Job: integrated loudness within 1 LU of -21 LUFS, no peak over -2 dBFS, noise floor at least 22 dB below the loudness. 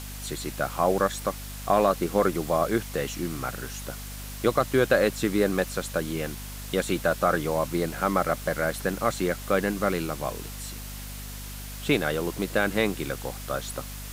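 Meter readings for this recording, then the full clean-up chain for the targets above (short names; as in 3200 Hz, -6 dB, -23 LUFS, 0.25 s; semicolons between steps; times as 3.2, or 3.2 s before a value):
hum 50 Hz; harmonics up to 250 Hz; hum level -37 dBFS; noise floor -38 dBFS; noise floor target -49 dBFS; loudness -27.0 LUFS; peak -8.5 dBFS; loudness target -21.0 LUFS
-> de-hum 50 Hz, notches 5; denoiser 11 dB, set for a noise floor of -38 dBFS; gain +6 dB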